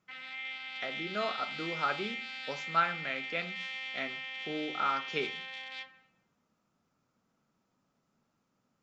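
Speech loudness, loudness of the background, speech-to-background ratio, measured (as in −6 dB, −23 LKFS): −35.5 LKFS, −38.5 LKFS, 3.0 dB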